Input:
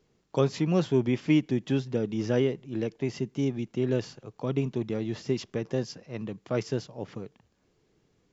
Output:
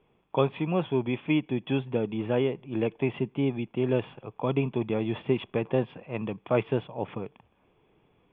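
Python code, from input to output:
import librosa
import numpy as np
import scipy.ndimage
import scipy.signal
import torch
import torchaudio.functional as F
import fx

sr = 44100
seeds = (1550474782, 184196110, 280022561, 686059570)

y = fx.rider(x, sr, range_db=3, speed_s=0.5)
y = scipy.signal.sosfilt(scipy.signal.cheby1(6, 9, 3500.0, 'lowpass', fs=sr, output='sos'), y)
y = F.gain(torch.from_numpy(y), 8.0).numpy()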